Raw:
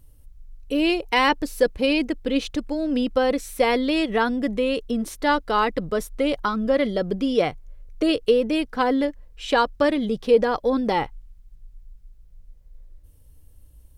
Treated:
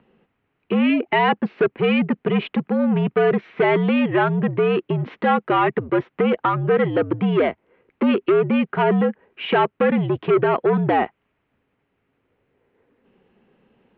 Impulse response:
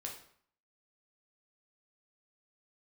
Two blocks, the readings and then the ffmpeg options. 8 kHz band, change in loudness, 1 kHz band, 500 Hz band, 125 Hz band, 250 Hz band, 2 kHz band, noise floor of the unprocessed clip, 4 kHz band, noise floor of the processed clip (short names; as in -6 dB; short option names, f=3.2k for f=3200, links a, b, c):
under -35 dB, +2.5 dB, +2.5 dB, +2.5 dB, +14.5 dB, +3.0 dB, +2.0 dB, -50 dBFS, -4.0 dB, -73 dBFS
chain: -filter_complex "[0:a]asplit=2[a][b];[b]acompressor=threshold=-30dB:ratio=6,volume=2dB[c];[a][c]amix=inputs=2:normalize=0,asoftclip=type=tanh:threshold=-18dB,highpass=f=250:t=q:w=0.5412,highpass=f=250:t=q:w=1.307,lowpass=f=2.8k:t=q:w=0.5176,lowpass=f=2.8k:t=q:w=0.7071,lowpass=f=2.8k:t=q:w=1.932,afreqshift=-76,volume=5.5dB"